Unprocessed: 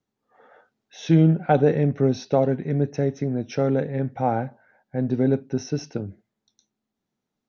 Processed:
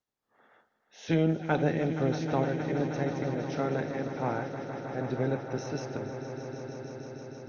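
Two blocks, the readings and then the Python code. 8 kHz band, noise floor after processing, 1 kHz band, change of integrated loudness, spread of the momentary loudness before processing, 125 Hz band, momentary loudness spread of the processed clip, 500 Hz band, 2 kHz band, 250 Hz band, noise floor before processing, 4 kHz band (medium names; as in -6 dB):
no reading, -76 dBFS, -6.5 dB, -8.5 dB, 14 LU, -9.0 dB, 13 LU, -7.5 dB, 0.0 dB, -8.0 dB, -83 dBFS, -4.0 dB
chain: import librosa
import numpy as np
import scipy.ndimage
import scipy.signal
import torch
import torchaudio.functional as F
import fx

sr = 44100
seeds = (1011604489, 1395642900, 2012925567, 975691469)

y = fx.spec_clip(x, sr, under_db=14)
y = fx.echo_swell(y, sr, ms=157, loudest=5, wet_db=-13)
y = y * librosa.db_to_amplitude(-9.0)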